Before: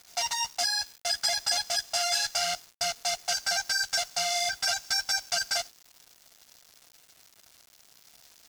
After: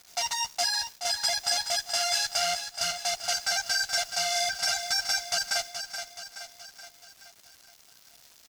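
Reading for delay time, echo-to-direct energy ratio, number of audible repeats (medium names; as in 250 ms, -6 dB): 425 ms, -7.5 dB, 5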